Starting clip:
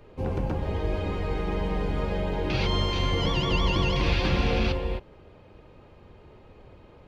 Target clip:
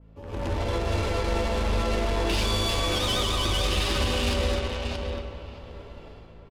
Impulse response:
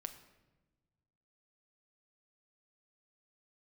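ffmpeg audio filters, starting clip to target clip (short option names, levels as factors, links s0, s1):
-filter_complex "[0:a]equalizer=f=140:t=o:w=0.48:g=-15,acompressor=threshold=0.02:ratio=2,alimiter=level_in=1.26:limit=0.0631:level=0:latency=1:release=74,volume=0.794,dynaudnorm=f=120:g=7:m=6.31,asplit=2[s0][s1];[s1]adelay=679,lowpass=f=4300:p=1,volume=0.501,asplit=2[s2][s3];[s3]adelay=679,lowpass=f=4300:p=1,volume=0.27,asplit=2[s4][s5];[s5]adelay=679,lowpass=f=4300:p=1,volume=0.27[s6];[s0][s2][s4][s6]amix=inputs=4:normalize=0,aeval=exprs='0.126*(cos(1*acos(clip(val(0)/0.126,-1,1)))-cos(1*PI/2))+0.02*(cos(3*acos(clip(val(0)/0.126,-1,1)))-cos(3*PI/2))':c=same,aeval=exprs='val(0)+0.00708*(sin(2*PI*50*n/s)+sin(2*PI*2*50*n/s)/2+sin(2*PI*3*50*n/s)/3+sin(2*PI*4*50*n/s)/4+sin(2*PI*5*50*n/s)/5)':c=same,asetrate=48000,aresample=44100[s7];[1:a]atrim=start_sample=2205,asetrate=23373,aresample=44100[s8];[s7][s8]afir=irnorm=-1:irlink=0,adynamicequalizer=threshold=0.00282:dfrequency=2600:dqfactor=0.7:tfrequency=2600:tqfactor=0.7:attack=5:release=100:ratio=0.375:range=2.5:mode=boostabove:tftype=highshelf,volume=0.501"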